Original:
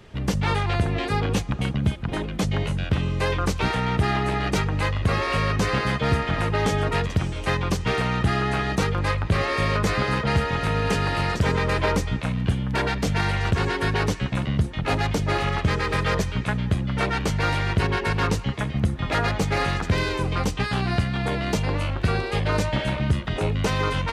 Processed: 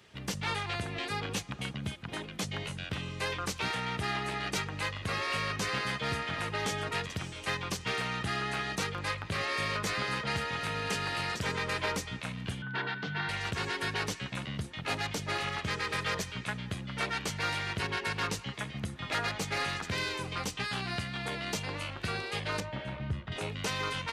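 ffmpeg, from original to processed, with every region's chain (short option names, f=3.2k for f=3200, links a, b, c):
-filter_complex "[0:a]asettb=1/sr,asplit=3[a][b][c];[a]atrim=end=12.624[d];[b]atrim=start=12.62:end=13.29,asetpts=PTS-STARTPTS,afade=t=in:d=0.004:c=qsin,afade=t=out:st=0.666:d=0.004:c=qsin,aeval=exprs='val(0)+0.0251*sin(2*PI*1500*n/s)':c=same,highpass=f=130:w=0.5412,highpass=f=130:w=1.3066,equalizer=f=140:t=q:w=4:g=6,equalizer=f=230:t=q:w=4:g=-5,equalizer=f=570:t=q:w=4:g=-9,equalizer=f=2.4k:t=q:w=4:g=-7,lowpass=f=3.6k:w=0.5412,lowpass=f=3.6k:w=1.3066[e];[c]atrim=start=13.286[f];[d][e]acrossfade=d=0.004:c1=hsin:c2=qsin[g];[g][f]acrossfade=d=0.004:c1=qsin:c2=hsin,asettb=1/sr,asplit=3[h][i][j];[h]atrim=end=22.604[k];[i]atrim=start=22.6:end=23.32,asetpts=PTS-STARTPTS,afade=t=in:d=0.004:c=qsin,afade=t=out:st=0.716:d=0.004:c=qsin,lowpass=f=1k:p=1,asubboost=boost=8.5:cutoff=140[l];[j]atrim=start=23.316[m];[k][l]acrossfade=d=0.004:c1=hsin:c2=qsin[n];[n][m]acrossfade=d=0.004:c1=qsin:c2=hsin,highpass=93,tiltshelf=f=1.3k:g=-5.5,volume=-8dB"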